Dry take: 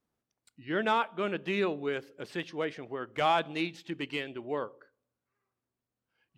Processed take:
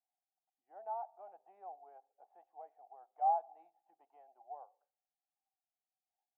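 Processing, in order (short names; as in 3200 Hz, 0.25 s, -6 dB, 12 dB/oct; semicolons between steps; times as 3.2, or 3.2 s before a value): Butterworth band-pass 760 Hz, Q 6.2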